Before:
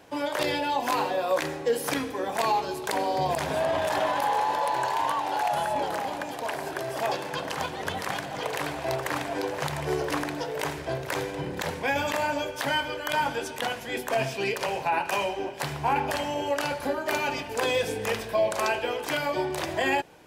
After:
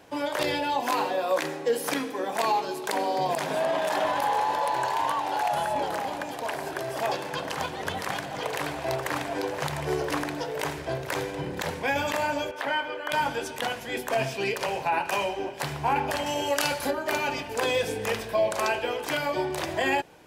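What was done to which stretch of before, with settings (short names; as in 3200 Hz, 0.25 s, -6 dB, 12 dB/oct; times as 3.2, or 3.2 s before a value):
0.81–4.04 HPF 160 Hz 24 dB/oct
12.51–13.12 three-band isolator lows -16 dB, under 260 Hz, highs -13 dB, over 3100 Hz
16.26–16.91 high shelf 2700 Hz +10 dB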